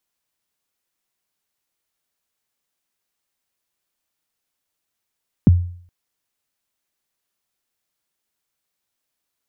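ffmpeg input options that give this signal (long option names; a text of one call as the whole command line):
ffmpeg -f lavfi -i "aevalsrc='0.596*pow(10,-3*t/0.54)*sin(2*PI*(280*0.021/log(88/280)*(exp(log(88/280)*min(t,0.021)/0.021)-1)+88*max(t-0.021,0)))':duration=0.42:sample_rate=44100" out.wav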